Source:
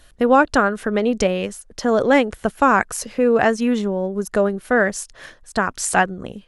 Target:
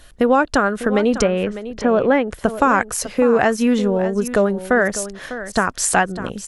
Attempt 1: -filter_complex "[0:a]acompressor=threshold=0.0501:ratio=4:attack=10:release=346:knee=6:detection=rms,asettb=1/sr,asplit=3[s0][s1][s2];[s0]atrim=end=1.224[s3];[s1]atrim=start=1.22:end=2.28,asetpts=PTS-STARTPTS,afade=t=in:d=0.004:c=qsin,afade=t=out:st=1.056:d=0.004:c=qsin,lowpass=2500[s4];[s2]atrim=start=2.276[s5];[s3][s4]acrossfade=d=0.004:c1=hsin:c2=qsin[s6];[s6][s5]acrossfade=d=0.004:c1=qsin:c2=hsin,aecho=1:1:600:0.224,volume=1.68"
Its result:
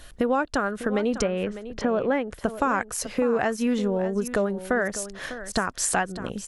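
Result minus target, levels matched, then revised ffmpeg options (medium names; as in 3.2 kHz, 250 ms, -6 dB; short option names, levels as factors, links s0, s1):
compression: peak gain reduction +8.5 dB
-filter_complex "[0:a]acompressor=threshold=0.188:ratio=4:attack=10:release=346:knee=6:detection=rms,asettb=1/sr,asplit=3[s0][s1][s2];[s0]atrim=end=1.224[s3];[s1]atrim=start=1.22:end=2.28,asetpts=PTS-STARTPTS,afade=t=in:d=0.004:c=qsin,afade=t=out:st=1.056:d=0.004:c=qsin,lowpass=2500[s4];[s2]atrim=start=2.276[s5];[s3][s4]acrossfade=d=0.004:c1=hsin:c2=qsin[s6];[s6][s5]acrossfade=d=0.004:c1=qsin:c2=hsin,aecho=1:1:600:0.224,volume=1.68"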